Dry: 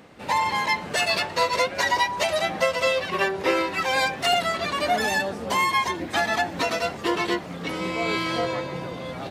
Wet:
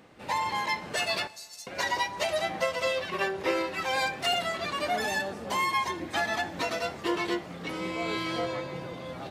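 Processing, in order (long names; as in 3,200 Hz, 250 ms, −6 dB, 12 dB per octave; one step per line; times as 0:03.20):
0:01.27–0:01.67: inverse Chebyshev high-pass filter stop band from 990 Hz, stop band 80 dB
coupled-rooms reverb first 0.29 s, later 2.3 s, from −18 dB, DRR 11 dB
level −6 dB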